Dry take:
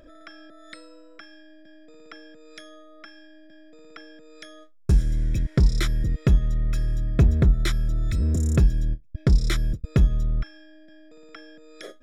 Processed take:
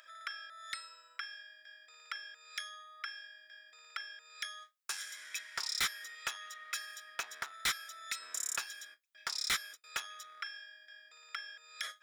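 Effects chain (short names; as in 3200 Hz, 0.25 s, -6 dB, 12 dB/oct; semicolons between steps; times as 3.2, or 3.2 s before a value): HPF 1200 Hz 24 dB/oct; hard clip -33 dBFS, distortion -6 dB; gain +5 dB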